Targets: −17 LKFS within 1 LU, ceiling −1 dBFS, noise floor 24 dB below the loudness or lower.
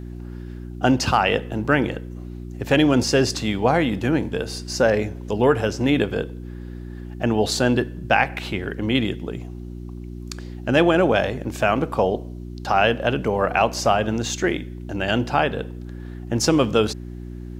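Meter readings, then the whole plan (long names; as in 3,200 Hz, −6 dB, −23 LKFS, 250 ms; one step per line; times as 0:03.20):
mains hum 60 Hz; hum harmonics up to 360 Hz; level of the hum −31 dBFS; integrated loudness −21.5 LKFS; sample peak −2.5 dBFS; target loudness −17.0 LKFS
→ hum removal 60 Hz, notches 6
level +4.5 dB
brickwall limiter −1 dBFS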